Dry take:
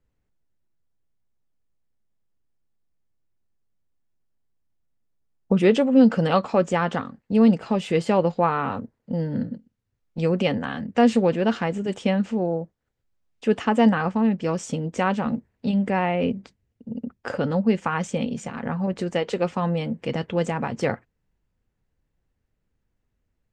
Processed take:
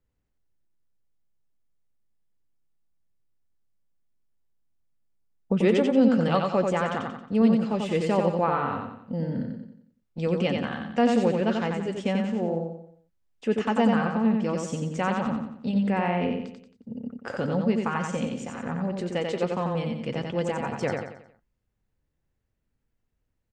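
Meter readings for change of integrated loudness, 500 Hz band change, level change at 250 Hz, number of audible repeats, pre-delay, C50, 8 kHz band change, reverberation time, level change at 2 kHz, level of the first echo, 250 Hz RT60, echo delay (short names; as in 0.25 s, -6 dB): -3.0 dB, -3.0 dB, -3.0 dB, 5, none, none, -3.0 dB, none, -3.0 dB, -4.0 dB, none, 90 ms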